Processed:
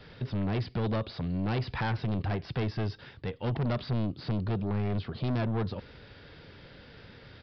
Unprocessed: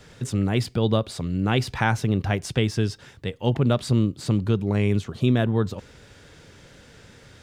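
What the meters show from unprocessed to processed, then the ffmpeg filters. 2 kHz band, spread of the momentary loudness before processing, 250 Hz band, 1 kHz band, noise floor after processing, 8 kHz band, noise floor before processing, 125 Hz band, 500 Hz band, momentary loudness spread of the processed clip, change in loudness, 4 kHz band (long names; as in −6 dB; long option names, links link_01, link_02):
−9.5 dB, 7 LU, −8.5 dB, −7.0 dB, −52 dBFS, below −25 dB, −50 dBFS, −7.5 dB, −9.0 dB, 20 LU, −8.5 dB, −10.0 dB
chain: -filter_complex "[0:a]acrossover=split=2800[link_01][link_02];[link_02]acompressor=threshold=-41dB:ratio=4:attack=1:release=60[link_03];[link_01][link_03]amix=inputs=2:normalize=0,aresample=11025,asoftclip=type=tanh:threshold=-24.5dB,aresample=44100,volume=-1.5dB"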